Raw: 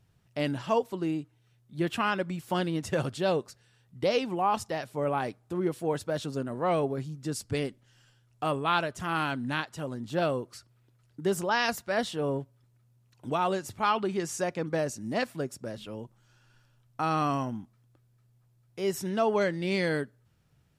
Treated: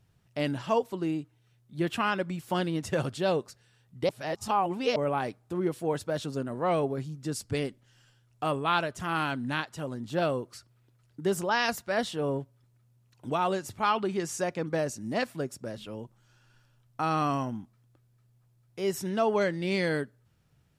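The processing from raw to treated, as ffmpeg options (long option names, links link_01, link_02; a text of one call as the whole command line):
ffmpeg -i in.wav -filter_complex "[0:a]asplit=3[link_01][link_02][link_03];[link_01]atrim=end=4.092[link_04];[link_02]atrim=start=4.088:end=4.962,asetpts=PTS-STARTPTS,areverse[link_05];[link_03]atrim=start=4.958[link_06];[link_04][link_05]acrossfade=duration=0.004:curve1=hsin:curve2=hsin[link_07];[link_07][link_06]acrossfade=duration=0.004:curve1=hsin:curve2=hsin" out.wav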